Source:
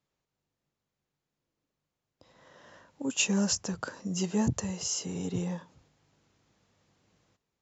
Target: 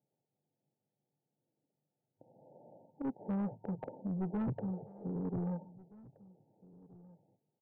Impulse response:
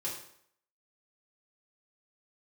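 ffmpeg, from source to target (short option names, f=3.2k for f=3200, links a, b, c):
-filter_complex "[0:a]afftfilt=real='re*between(b*sr/4096,100,920)':imag='im*between(b*sr/4096,100,920)':win_size=4096:overlap=0.75,asoftclip=type=tanh:threshold=-31.5dB,asplit=2[a][b];[b]adelay=1574,volume=-21dB,highshelf=f=4k:g=-35.4[c];[a][c]amix=inputs=2:normalize=0"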